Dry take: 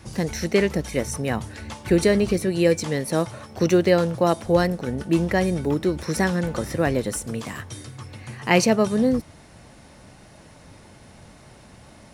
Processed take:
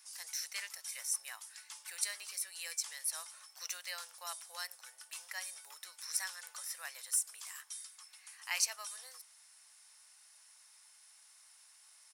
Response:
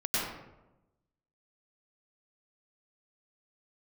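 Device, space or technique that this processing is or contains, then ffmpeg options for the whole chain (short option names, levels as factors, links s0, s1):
headphones lying on a table: -af "highpass=f=1000:w=0.5412,highpass=f=1000:w=1.3066,firequalizer=gain_entry='entry(160,0);entry(230,-22);entry(540,-10);entry(8700,8)':delay=0.05:min_phase=1,equalizer=f=5200:t=o:w=0.2:g=5,volume=0.376"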